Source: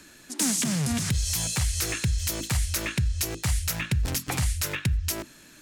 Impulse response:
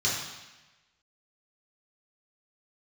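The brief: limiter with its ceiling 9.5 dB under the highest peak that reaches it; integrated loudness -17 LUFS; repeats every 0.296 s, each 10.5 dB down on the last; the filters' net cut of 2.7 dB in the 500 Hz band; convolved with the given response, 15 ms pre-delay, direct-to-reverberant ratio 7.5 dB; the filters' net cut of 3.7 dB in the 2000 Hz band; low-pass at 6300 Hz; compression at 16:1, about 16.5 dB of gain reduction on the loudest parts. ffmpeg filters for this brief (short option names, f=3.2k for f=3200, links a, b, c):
-filter_complex "[0:a]lowpass=6.3k,equalizer=f=500:t=o:g=-3.5,equalizer=f=2k:t=o:g=-4.5,acompressor=threshold=-38dB:ratio=16,alimiter=level_in=10dB:limit=-24dB:level=0:latency=1,volume=-10dB,aecho=1:1:296|592|888:0.299|0.0896|0.0269,asplit=2[a][b];[1:a]atrim=start_sample=2205,adelay=15[c];[b][c]afir=irnorm=-1:irlink=0,volume=-18dB[d];[a][d]amix=inputs=2:normalize=0,volume=25dB"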